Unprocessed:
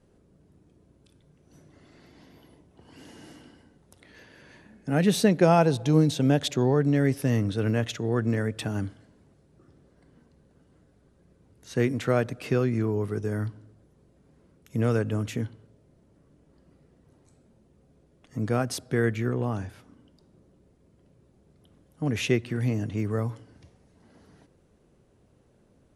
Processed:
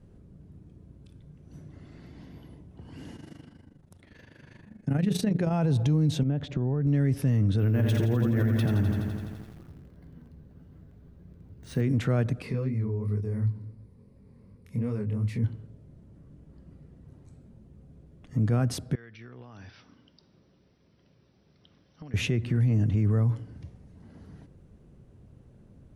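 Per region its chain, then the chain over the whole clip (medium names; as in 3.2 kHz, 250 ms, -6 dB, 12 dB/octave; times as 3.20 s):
3.16–5.53 s: hum notches 60/120/180/240/300/360/420/480 Hz + AM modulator 25 Hz, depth 65%
6.23–6.87 s: compression 10:1, threshold -29 dBFS + tape spacing loss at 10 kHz 23 dB
7.59–11.81 s: doubling 12 ms -10.5 dB + careless resampling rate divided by 3×, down filtered, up hold + bit-crushed delay 84 ms, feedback 80%, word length 9-bit, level -7 dB
12.42–15.44 s: rippled EQ curve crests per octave 0.91, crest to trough 9 dB + compression 2:1, threshold -38 dBFS + chorus 2.8 Hz, delay 19.5 ms, depth 6.5 ms
18.95–22.14 s: tilt EQ +4.5 dB/octave + compression 12:1, threshold -46 dBFS + brick-wall FIR low-pass 6 kHz
whole clip: tone controls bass +12 dB, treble -4 dB; peak limiter -17.5 dBFS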